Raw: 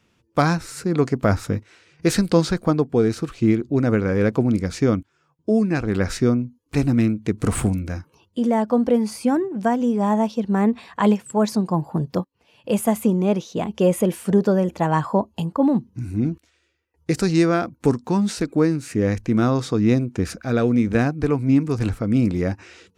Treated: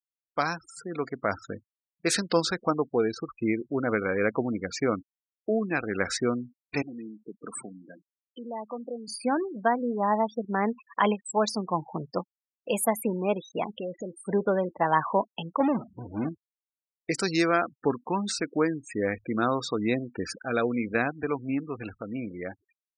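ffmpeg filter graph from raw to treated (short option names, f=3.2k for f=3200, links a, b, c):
-filter_complex "[0:a]asettb=1/sr,asplit=3[a][b][c];[a]atrim=end=6.824[d];[b]atrim=start=6.82:end=9.08,asetpts=PTS-STARTPTS,afade=t=in:d=0.004:c=qsin,afade=t=out:st=2.256:d=0.004:c=qsin,highpass=f=160:w=0.5412,highpass=f=160:w=1.3066,acompressor=threshold=-46dB:ratio=1.5:attack=3.2:release=140:knee=1:detection=peak[e];[c]atrim=start=9.076[f];[d][e]acrossfade=d=0.004:c1=hsin:c2=qsin[g];[g][f]acrossfade=d=0.004:c1=qsin:c2=hsin,asettb=1/sr,asplit=3[h][i][j];[h]atrim=end=13.734[k];[i]atrim=start=13.73:end=14.17,asetpts=PTS-STARTPTS,afade=t=in:d=0.004:c=qsin,afade=t=out:st=0.436:d=0.004:c=qsin,lowpass=4.9k,lowshelf=f=190:g=6,acompressor=threshold=-23dB:ratio=10:attack=3.2:release=140:knee=1:detection=peak[l];[j]atrim=start=14.166[m];[k][l]acrossfade=d=0.004:c1=hsin:c2=qsin[n];[n][m]acrossfade=d=0.004:c1=qsin:c2=hsin,asettb=1/sr,asplit=3[o][p][q];[o]atrim=end=15.604[r];[p]atrim=start=15.6:end=16.29,asetpts=PTS-STARTPTS,afade=t=in:d=0.004:c=qsin,afade=t=out:st=0.686:d=0.004:c=qsin,aeval=exprs='val(0)+0.5*0.0631*sgn(val(0))':c=same,agate=range=-33dB:threshold=-23dB:ratio=3:release=100:detection=peak[s];[q]atrim=start=16.286[t];[r][s]acrossfade=d=0.004:c1=hsin:c2=qsin[u];[u][t]acrossfade=d=0.004:c1=qsin:c2=hsin,afftfilt=real='re*gte(hypot(re,im),0.0316)':imag='im*gte(hypot(re,im),0.0316)':win_size=1024:overlap=0.75,highpass=f=1k:p=1,dynaudnorm=f=160:g=21:m=6dB,volume=-3.5dB"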